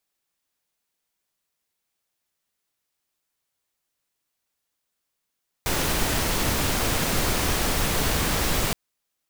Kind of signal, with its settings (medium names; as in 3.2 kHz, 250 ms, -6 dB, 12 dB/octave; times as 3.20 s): noise pink, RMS -23.5 dBFS 3.07 s